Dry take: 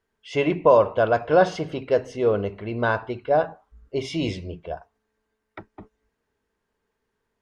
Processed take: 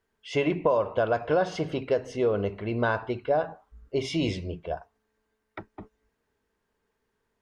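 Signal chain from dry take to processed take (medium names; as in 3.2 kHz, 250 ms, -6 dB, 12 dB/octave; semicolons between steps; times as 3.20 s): compression 4:1, threshold -21 dBFS, peak gain reduction 9 dB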